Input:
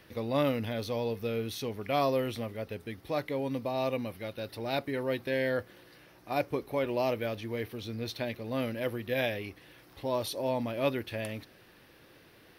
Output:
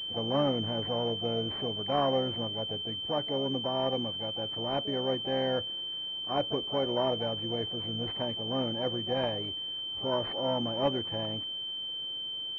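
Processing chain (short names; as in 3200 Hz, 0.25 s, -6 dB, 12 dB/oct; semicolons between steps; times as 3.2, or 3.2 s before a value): harmoniser +5 st -17 dB, +7 st -10 dB; pulse-width modulation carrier 3100 Hz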